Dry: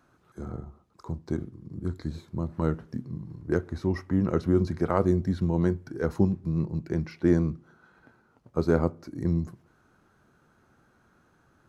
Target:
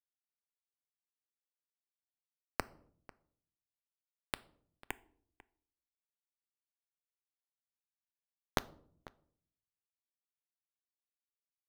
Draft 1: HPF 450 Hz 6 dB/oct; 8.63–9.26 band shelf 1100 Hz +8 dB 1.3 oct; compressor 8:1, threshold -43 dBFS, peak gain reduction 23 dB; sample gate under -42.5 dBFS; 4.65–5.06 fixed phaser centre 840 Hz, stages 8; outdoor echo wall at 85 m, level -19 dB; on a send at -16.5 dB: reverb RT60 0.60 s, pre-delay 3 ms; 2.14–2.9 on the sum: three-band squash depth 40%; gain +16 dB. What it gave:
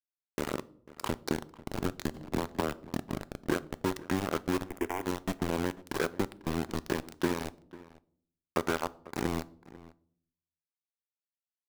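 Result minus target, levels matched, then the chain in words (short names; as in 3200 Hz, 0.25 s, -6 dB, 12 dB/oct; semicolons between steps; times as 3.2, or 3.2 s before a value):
sample gate: distortion -21 dB
HPF 450 Hz 6 dB/oct; 8.63–9.26 band shelf 1100 Hz +8 dB 1.3 oct; compressor 8:1, threshold -43 dBFS, peak gain reduction 23 dB; sample gate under -30.5 dBFS; 4.65–5.06 fixed phaser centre 840 Hz, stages 8; outdoor echo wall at 85 m, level -19 dB; on a send at -16.5 dB: reverb RT60 0.60 s, pre-delay 3 ms; 2.14–2.9 on the sum: three-band squash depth 40%; gain +16 dB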